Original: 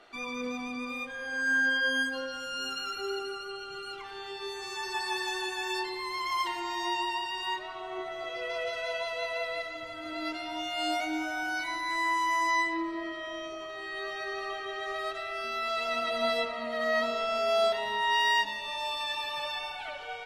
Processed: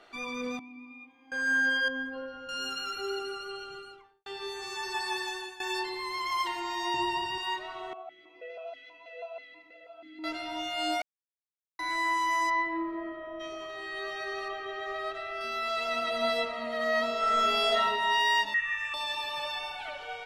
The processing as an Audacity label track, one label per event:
0.590000	1.320000	vowel filter u
1.880000	2.490000	tape spacing loss at 10 kHz 42 dB
3.560000	4.260000	studio fade out
5.000000	5.600000	fade out equal-power, to -16 dB
6.940000	7.380000	bell 110 Hz +14.5 dB 3 oct
7.930000	10.240000	vowel sequencer 6.2 Hz
11.020000	11.790000	mute
12.490000	13.390000	LPF 2300 Hz -> 1100 Hz
14.480000	15.410000	bell 12000 Hz -10 dB 2 oct
17.180000	17.830000	reverb throw, RT60 1.2 s, DRR -3.5 dB
18.540000	18.940000	EQ curve 150 Hz 0 dB, 280 Hz -17 dB, 400 Hz -28 dB, 860 Hz -19 dB, 1300 Hz +10 dB, 2100 Hz +15 dB, 4500 Hz -23 dB, 6900 Hz 0 dB, 11000 Hz -27 dB

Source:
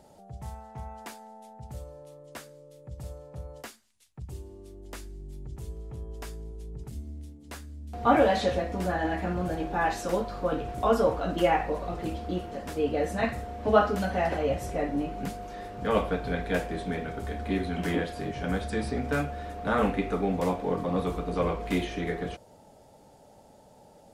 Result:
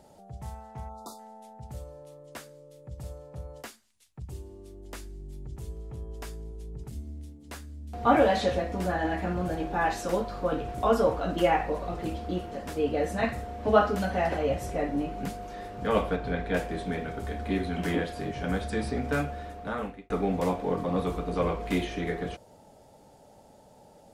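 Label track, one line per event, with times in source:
0.890000	1.190000	spectral delete 1400–3500 Hz
16.160000	16.570000	LPF 3900 Hz 6 dB/oct
19.290000	20.100000	fade out

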